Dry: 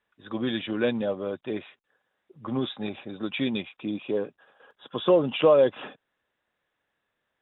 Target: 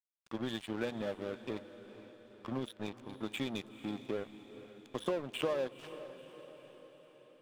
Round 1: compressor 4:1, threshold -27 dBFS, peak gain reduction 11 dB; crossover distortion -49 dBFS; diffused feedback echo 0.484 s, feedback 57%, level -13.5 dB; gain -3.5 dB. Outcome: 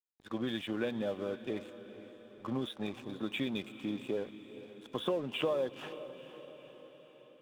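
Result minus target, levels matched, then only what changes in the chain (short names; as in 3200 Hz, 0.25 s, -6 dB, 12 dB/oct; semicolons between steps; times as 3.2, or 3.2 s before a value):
crossover distortion: distortion -11 dB
change: crossover distortion -37 dBFS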